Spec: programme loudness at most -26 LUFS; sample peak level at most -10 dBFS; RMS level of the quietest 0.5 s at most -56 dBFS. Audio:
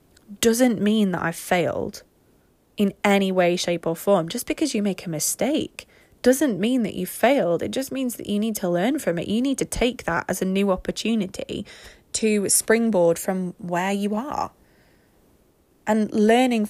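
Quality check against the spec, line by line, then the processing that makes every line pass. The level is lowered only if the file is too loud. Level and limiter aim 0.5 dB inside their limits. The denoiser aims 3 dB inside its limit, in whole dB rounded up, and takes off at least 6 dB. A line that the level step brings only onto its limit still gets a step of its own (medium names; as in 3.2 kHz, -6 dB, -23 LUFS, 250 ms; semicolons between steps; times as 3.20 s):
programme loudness -22.5 LUFS: fail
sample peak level -5.0 dBFS: fail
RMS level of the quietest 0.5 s -60 dBFS: pass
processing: trim -4 dB; peak limiter -10.5 dBFS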